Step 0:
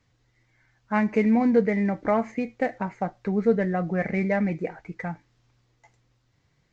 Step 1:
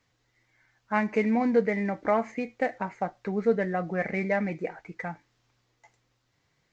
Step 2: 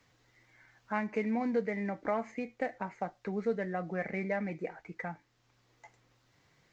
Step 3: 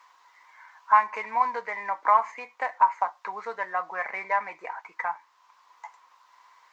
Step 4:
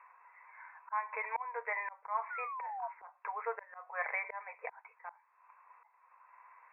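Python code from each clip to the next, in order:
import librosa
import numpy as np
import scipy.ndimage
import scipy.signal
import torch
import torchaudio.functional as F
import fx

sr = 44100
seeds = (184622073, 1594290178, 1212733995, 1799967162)

y1 = fx.low_shelf(x, sr, hz=230.0, db=-10.0)
y2 = fx.band_squash(y1, sr, depth_pct=40)
y2 = y2 * 10.0 ** (-7.0 / 20.0)
y3 = fx.highpass_res(y2, sr, hz=1000.0, q=12.0)
y3 = y3 * 10.0 ** (5.5 / 20.0)
y4 = fx.brickwall_bandpass(y3, sr, low_hz=420.0, high_hz=2700.0)
y4 = fx.auto_swell(y4, sr, attack_ms=398.0)
y4 = fx.spec_paint(y4, sr, seeds[0], shape='fall', start_s=2.3, length_s=0.58, low_hz=670.0, high_hz=1500.0, level_db=-39.0)
y4 = y4 * 10.0 ** (-2.0 / 20.0)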